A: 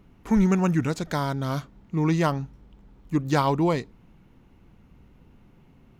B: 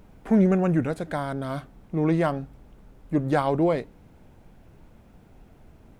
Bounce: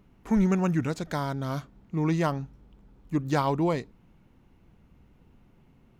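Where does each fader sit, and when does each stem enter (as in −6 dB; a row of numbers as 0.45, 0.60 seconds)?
−4.5, −18.0 decibels; 0.00, 0.00 seconds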